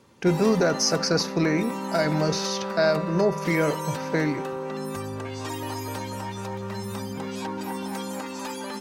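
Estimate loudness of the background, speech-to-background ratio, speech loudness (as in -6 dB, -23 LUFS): -32.0 LUFS, 7.5 dB, -24.5 LUFS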